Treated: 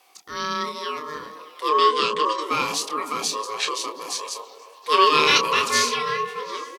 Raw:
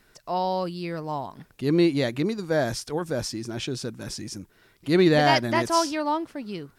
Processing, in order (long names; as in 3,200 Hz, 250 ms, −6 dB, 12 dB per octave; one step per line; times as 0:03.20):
phaser with its sweep stopped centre 320 Hz, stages 4
double-tracking delay 27 ms −7 dB
in parallel at −11.5 dB: soft clipping −22 dBFS, distortion −9 dB
on the sum: ring modulation 760 Hz
dynamic equaliser 2,900 Hz, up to +6 dB, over −43 dBFS, Q 0.94
0:01.68–0:02.42: linear-phase brick-wall low-pass 9,500 Hz
low-shelf EQ 450 Hz −11.5 dB
on a send: echo through a band-pass that steps 103 ms, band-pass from 210 Hz, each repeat 0.7 octaves, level −2 dB
on the sum: level +6 dB